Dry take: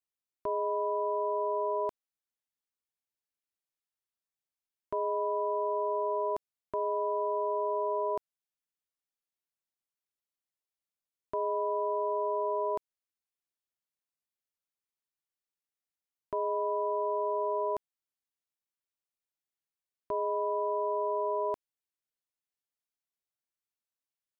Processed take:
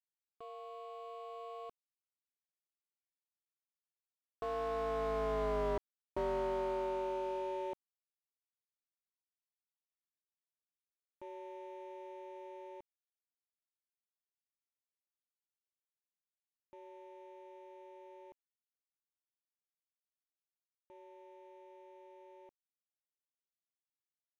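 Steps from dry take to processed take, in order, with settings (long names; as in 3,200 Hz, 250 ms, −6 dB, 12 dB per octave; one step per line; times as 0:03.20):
running median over 25 samples
source passing by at 0:05.65, 36 m/s, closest 24 metres
slew-rate limiting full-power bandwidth 11 Hz
level +2 dB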